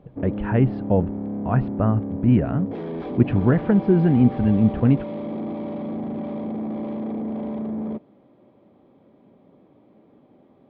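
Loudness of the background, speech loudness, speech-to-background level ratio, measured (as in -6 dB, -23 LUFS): -30.0 LUFS, -21.0 LUFS, 9.0 dB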